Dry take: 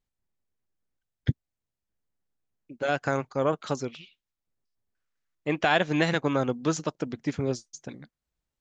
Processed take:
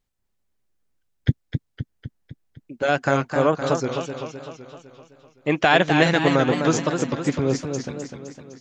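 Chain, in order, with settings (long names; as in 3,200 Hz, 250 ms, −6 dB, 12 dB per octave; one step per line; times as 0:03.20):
feedback echo with a swinging delay time 255 ms, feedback 56%, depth 126 cents, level −6.5 dB
level +6 dB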